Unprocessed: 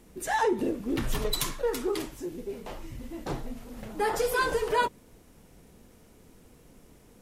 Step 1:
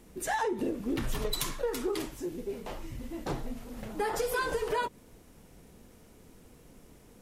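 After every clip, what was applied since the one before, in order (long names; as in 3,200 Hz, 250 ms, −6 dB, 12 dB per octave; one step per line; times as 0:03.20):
downward compressor, threshold −27 dBFS, peak gain reduction 7 dB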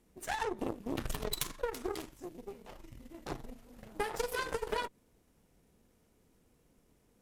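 harmonic generator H 4 −17 dB, 7 −19 dB, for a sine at −13 dBFS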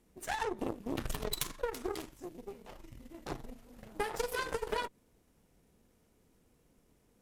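no processing that can be heard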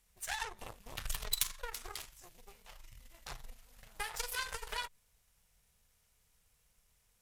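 guitar amp tone stack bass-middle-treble 10-0-10
level +4.5 dB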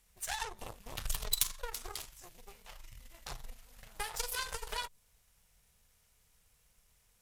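dynamic equaliser 1,900 Hz, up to −5 dB, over −54 dBFS, Q 0.99
level +3 dB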